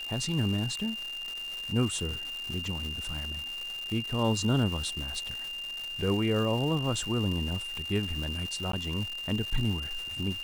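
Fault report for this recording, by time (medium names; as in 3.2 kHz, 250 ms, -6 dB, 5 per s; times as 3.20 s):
crackle 460 per s -35 dBFS
whine 2.8 kHz -35 dBFS
8.72–8.73 s: dropout 13 ms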